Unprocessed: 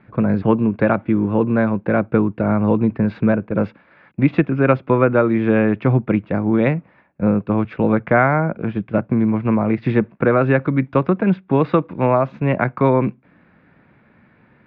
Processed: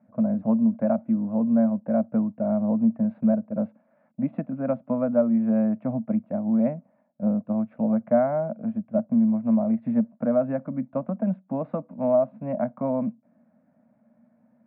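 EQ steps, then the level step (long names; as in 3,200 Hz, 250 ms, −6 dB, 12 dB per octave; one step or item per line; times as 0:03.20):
pair of resonant band-passes 380 Hz, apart 1.4 octaves
high-frequency loss of the air 140 metres
0.0 dB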